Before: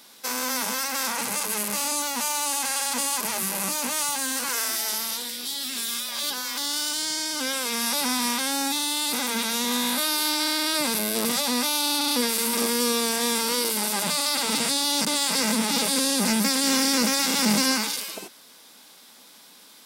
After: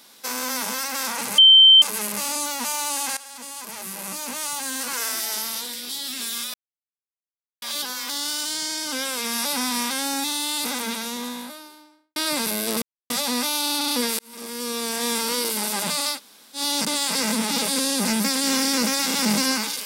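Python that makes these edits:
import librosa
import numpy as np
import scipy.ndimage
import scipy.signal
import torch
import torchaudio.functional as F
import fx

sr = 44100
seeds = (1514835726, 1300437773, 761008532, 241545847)

y = fx.studio_fade_out(x, sr, start_s=9.07, length_s=1.57)
y = fx.edit(y, sr, fx.insert_tone(at_s=1.38, length_s=0.44, hz=3110.0, db=-7.5),
    fx.fade_in_from(start_s=2.73, length_s=1.89, floor_db=-16.5),
    fx.insert_silence(at_s=6.1, length_s=1.08),
    fx.insert_silence(at_s=11.3, length_s=0.28),
    fx.fade_in_span(start_s=12.39, length_s=0.93),
    fx.room_tone_fill(start_s=14.35, length_s=0.43, crossfade_s=0.1), tone=tone)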